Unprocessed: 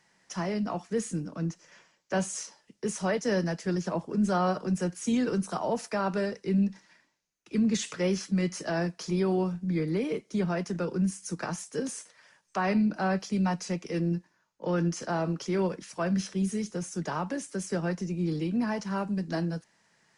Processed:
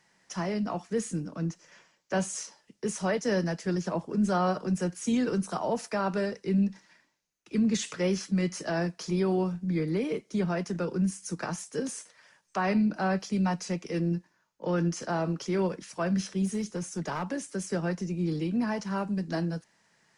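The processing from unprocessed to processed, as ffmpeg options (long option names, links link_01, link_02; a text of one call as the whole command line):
ffmpeg -i in.wav -filter_complex "[0:a]asplit=3[link_01][link_02][link_03];[link_01]afade=type=out:start_time=16.45:duration=0.02[link_04];[link_02]aeval=exprs='clip(val(0),-1,0.0447)':channel_layout=same,afade=type=in:start_time=16.45:duration=0.02,afade=type=out:start_time=17.23:duration=0.02[link_05];[link_03]afade=type=in:start_time=17.23:duration=0.02[link_06];[link_04][link_05][link_06]amix=inputs=3:normalize=0" out.wav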